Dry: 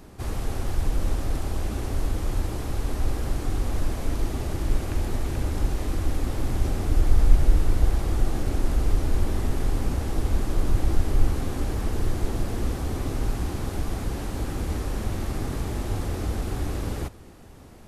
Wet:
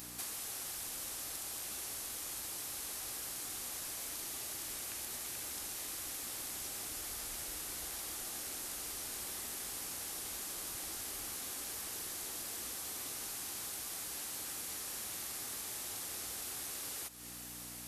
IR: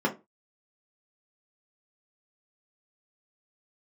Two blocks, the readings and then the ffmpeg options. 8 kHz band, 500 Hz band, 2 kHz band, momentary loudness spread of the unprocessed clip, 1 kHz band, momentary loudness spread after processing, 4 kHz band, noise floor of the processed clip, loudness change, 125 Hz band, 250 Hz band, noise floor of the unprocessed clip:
+4.5 dB, -20.0 dB, -7.5 dB, 6 LU, -13.5 dB, 0 LU, -1.5 dB, -47 dBFS, -11.5 dB, -33.0 dB, -23.5 dB, -45 dBFS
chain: -af "aeval=exprs='val(0)+0.0224*(sin(2*PI*60*n/s)+sin(2*PI*2*60*n/s)/2+sin(2*PI*3*60*n/s)/3+sin(2*PI*4*60*n/s)/4+sin(2*PI*5*60*n/s)/5)':c=same,aderivative,acompressor=threshold=0.00178:ratio=6,volume=5.31"

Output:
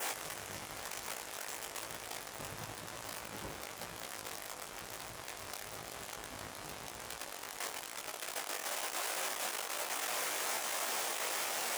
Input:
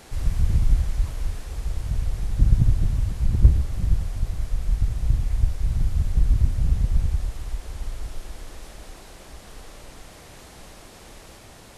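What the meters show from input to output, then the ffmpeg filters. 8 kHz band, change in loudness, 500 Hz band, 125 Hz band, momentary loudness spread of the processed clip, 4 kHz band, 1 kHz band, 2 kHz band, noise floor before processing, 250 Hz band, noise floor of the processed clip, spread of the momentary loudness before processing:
no reading, -14.0 dB, +0.5 dB, -33.0 dB, 10 LU, +5.5 dB, +6.0 dB, +6.5 dB, -46 dBFS, -16.5 dB, -48 dBFS, 24 LU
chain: -af "aeval=exprs='val(0)+0.5*0.0447*sgn(val(0))':c=same,adynamicequalizer=threshold=0.00316:dfrequency=4100:dqfactor=2.3:tfrequency=4100:tqfactor=2.3:attack=5:release=100:ratio=0.375:range=2:mode=cutabove:tftype=bell,flanger=delay=17.5:depth=2.7:speed=1,highpass=630,volume=1.12"

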